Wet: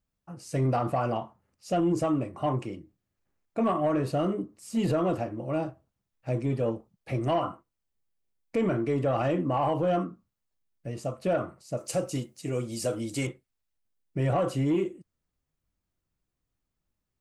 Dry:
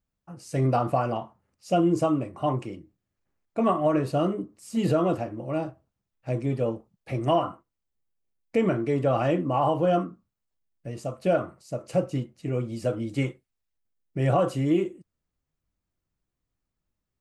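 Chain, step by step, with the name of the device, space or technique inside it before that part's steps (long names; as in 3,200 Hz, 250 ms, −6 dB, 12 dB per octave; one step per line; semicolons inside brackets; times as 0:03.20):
soft clipper into limiter (soft clipping −14.5 dBFS, distortion −21 dB; brickwall limiter −19 dBFS, peak gain reduction 3 dB)
0:11.77–0:13.27: bass and treble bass −4 dB, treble +14 dB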